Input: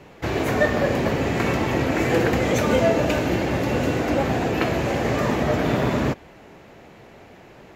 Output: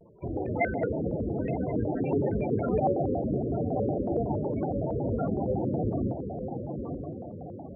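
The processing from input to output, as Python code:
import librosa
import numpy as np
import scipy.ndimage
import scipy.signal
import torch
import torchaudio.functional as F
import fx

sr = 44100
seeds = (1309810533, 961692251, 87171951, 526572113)

p1 = x + fx.echo_diffused(x, sr, ms=985, feedback_pct=50, wet_db=-6.5, dry=0)
p2 = fx.spec_topn(p1, sr, count=16)
p3 = fx.vibrato_shape(p2, sr, shape='square', rate_hz=5.4, depth_cents=250.0)
y = F.gain(torch.from_numpy(p3), -6.5).numpy()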